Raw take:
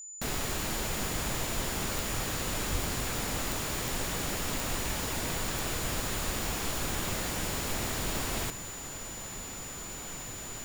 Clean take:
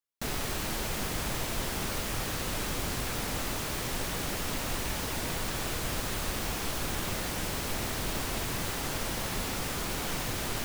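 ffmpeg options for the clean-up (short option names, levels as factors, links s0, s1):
-filter_complex "[0:a]adeclick=t=4,bandreject=f=7000:w=30,asplit=3[s0][s1][s2];[s0]afade=t=out:st=2.71:d=0.02[s3];[s1]highpass=f=140:w=0.5412,highpass=f=140:w=1.3066,afade=t=in:st=2.71:d=0.02,afade=t=out:st=2.83:d=0.02[s4];[s2]afade=t=in:st=2.83:d=0.02[s5];[s3][s4][s5]amix=inputs=3:normalize=0,asetnsamples=n=441:p=0,asendcmd='8.5 volume volume 9.5dB',volume=1"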